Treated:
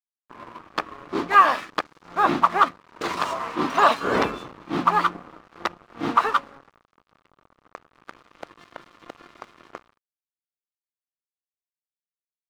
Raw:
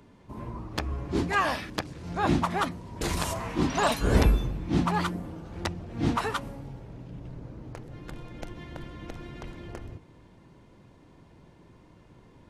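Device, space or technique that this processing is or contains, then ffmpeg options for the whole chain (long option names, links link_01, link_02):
pocket radio on a weak battery: -af "highpass=320,lowpass=4000,aeval=exprs='sgn(val(0))*max(abs(val(0))-0.00562,0)':channel_layout=same,equalizer=frequency=1200:width_type=o:width=0.47:gain=9.5,volume=5.5dB"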